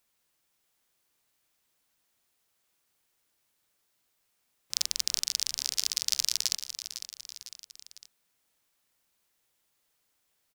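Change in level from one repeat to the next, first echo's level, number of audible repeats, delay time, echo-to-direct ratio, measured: −5.5 dB, −11.0 dB, 3, 503 ms, −9.5 dB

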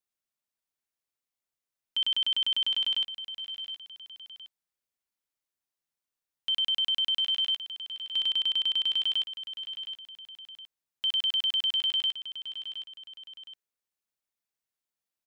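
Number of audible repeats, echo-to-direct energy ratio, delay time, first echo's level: 2, −11.0 dB, 716 ms, −11.5 dB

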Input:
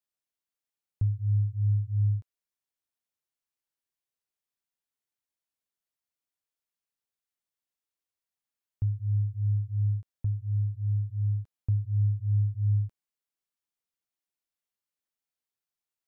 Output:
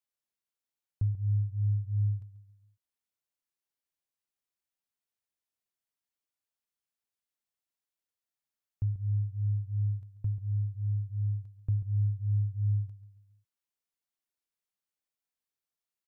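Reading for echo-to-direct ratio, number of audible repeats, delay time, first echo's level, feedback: −13.5 dB, 3, 139 ms, −14.5 dB, 44%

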